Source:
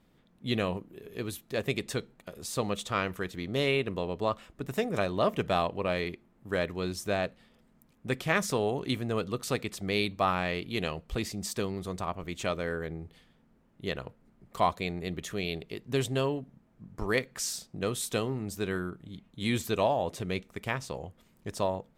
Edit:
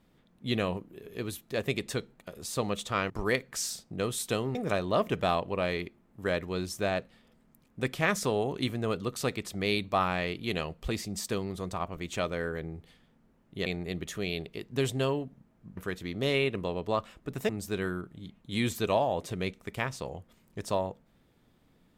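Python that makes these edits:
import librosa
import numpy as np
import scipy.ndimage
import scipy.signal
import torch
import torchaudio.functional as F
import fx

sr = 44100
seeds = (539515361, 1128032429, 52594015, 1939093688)

y = fx.edit(x, sr, fx.swap(start_s=3.1, length_s=1.72, other_s=16.93, other_length_s=1.45),
    fx.cut(start_s=13.93, length_s=0.89), tone=tone)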